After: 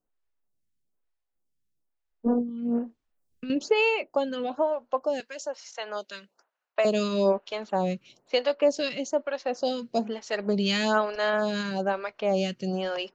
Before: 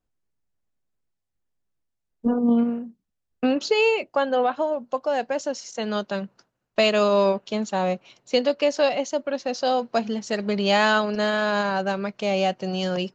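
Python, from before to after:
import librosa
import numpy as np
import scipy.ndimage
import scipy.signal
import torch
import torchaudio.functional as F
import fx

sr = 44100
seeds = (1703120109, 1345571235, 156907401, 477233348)

y = fx.over_compress(x, sr, threshold_db=-28.0, ratio=-1.0, at=(2.39, 3.5))
y = fx.highpass(y, sr, hz=670.0, slope=12, at=(5.2, 6.85))
y = fx.stagger_phaser(y, sr, hz=1.1)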